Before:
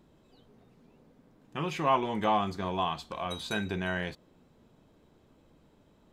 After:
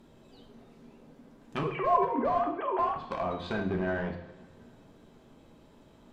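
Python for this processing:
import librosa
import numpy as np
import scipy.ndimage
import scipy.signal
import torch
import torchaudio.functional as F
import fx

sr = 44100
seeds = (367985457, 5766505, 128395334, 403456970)

p1 = fx.sine_speech(x, sr, at=(1.63, 2.96))
p2 = fx.hum_notches(p1, sr, base_hz=50, count=4)
p3 = (np.mod(10.0 ** (26.5 / 20.0) * p2 + 1.0, 2.0) - 1.0) / 10.0 ** (26.5 / 20.0)
p4 = p2 + (p3 * 10.0 ** (-4.0 / 20.0))
p5 = fx.env_lowpass_down(p4, sr, base_hz=1100.0, full_db=-28.0)
y = fx.rev_double_slope(p5, sr, seeds[0], early_s=0.65, late_s=2.4, knee_db=-18, drr_db=3.0)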